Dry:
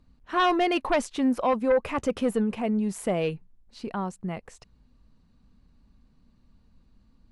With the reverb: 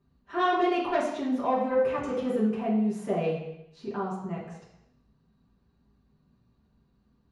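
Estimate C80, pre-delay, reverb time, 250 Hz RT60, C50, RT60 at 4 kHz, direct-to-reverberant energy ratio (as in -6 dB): 6.5 dB, 3 ms, 0.80 s, 0.85 s, 3.5 dB, 0.80 s, -9.0 dB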